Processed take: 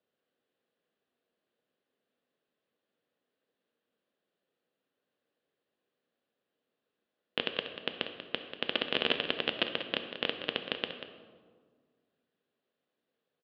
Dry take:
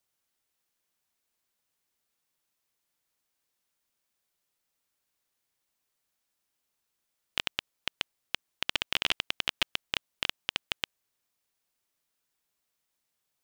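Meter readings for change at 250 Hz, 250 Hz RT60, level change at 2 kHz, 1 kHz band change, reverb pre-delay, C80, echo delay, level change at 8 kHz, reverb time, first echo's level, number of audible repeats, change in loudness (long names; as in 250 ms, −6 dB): +8.5 dB, 2.1 s, −1.5 dB, 0.0 dB, 5 ms, 7.5 dB, 189 ms, below −25 dB, 1.7 s, −10.5 dB, 1, −1.0 dB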